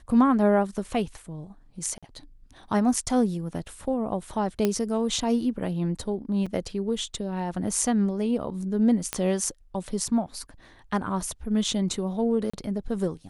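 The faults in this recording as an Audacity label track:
1.980000	2.030000	dropout 46 ms
4.650000	4.650000	pop -10 dBFS
6.460000	6.460000	dropout 5 ms
9.130000	9.130000	pop -9 dBFS
12.500000	12.540000	dropout 35 ms

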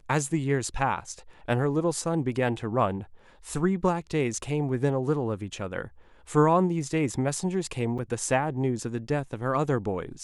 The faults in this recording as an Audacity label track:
7.980000	7.990000	dropout 6.8 ms

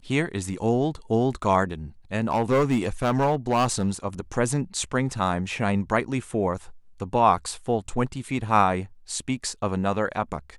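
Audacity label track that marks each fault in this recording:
2.210000	3.900000	clipped -16.5 dBFS

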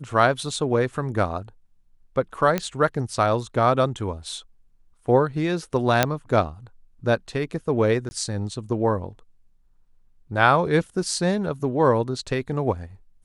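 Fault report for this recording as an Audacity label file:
2.580000	2.580000	pop -9 dBFS
6.030000	6.030000	pop -2 dBFS
8.090000	8.110000	dropout 20 ms

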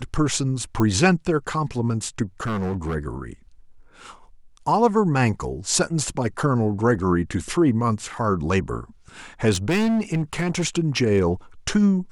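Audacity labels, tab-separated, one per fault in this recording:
0.800000	0.800000	pop -11 dBFS
2.410000	2.960000	clipped -22 dBFS
9.520000	10.650000	clipped -18 dBFS

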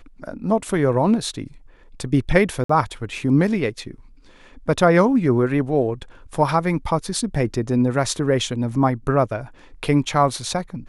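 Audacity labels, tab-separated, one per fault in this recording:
2.640000	2.690000	dropout 54 ms

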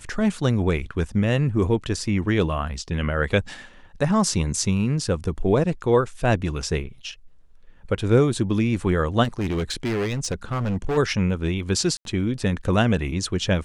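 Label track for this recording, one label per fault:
9.230000	10.980000	clipped -21 dBFS
11.970000	12.050000	dropout 82 ms

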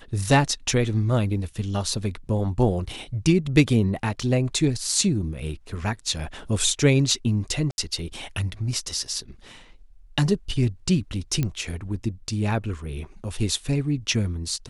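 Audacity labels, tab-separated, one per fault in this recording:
7.710000	7.780000	dropout 71 ms
11.430000	11.430000	pop -12 dBFS

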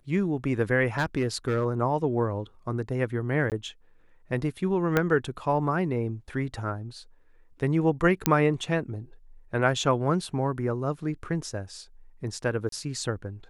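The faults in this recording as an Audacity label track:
0.980000	1.660000	clipped -20 dBFS
3.500000	3.520000	dropout 18 ms
4.970000	4.970000	pop -9 dBFS
8.260000	8.260000	pop -3 dBFS
12.690000	12.720000	dropout 33 ms

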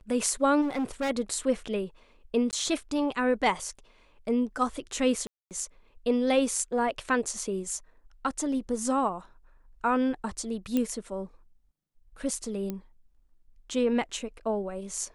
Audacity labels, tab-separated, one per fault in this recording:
0.610000	1.110000	clipped -25.5 dBFS
2.510000	2.530000	dropout 18 ms
5.270000	5.510000	dropout 238 ms
10.770000	10.770000	pop -15 dBFS
12.700000	12.700000	pop -20 dBFS

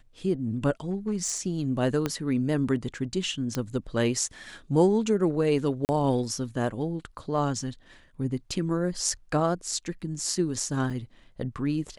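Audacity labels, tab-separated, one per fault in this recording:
0.910000	1.380000	clipped -22.5 dBFS
2.060000	2.060000	pop -13 dBFS
3.550000	3.550000	pop -14 dBFS
5.850000	5.890000	dropout 39 ms
10.900000	10.900000	dropout 5 ms

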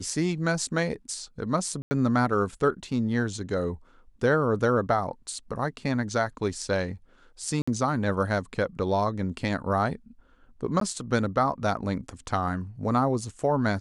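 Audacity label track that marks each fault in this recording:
1.820000	1.910000	dropout 90 ms
7.620000	7.670000	dropout 55 ms
10.800000	10.810000	dropout

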